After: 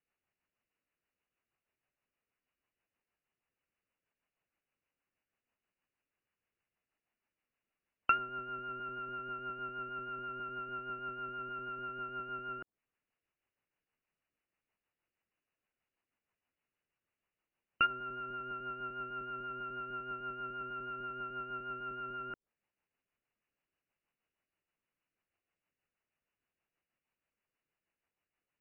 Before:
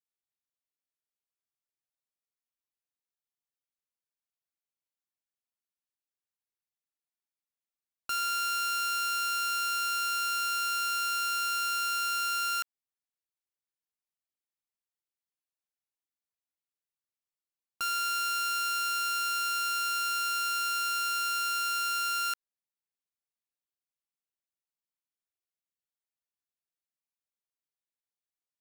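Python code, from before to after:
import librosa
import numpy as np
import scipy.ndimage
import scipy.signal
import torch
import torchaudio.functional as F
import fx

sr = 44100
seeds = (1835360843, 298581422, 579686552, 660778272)

y = fx.rotary(x, sr, hz=6.3)
y = fx.env_lowpass_down(y, sr, base_hz=430.0, full_db=-32.5)
y = fx.brickwall_lowpass(y, sr, high_hz=3000.0)
y = y * librosa.db_to_amplitude(13.5)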